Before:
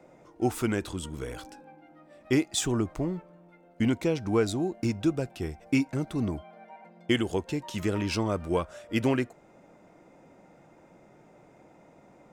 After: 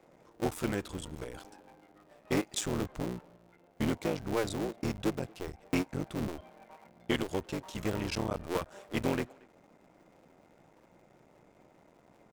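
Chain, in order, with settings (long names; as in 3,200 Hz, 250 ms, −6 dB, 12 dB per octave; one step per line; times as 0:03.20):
sub-harmonics by changed cycles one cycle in 3, muted
far-end echo of a speakerphone 230 ms, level −24 dB
level −4 dB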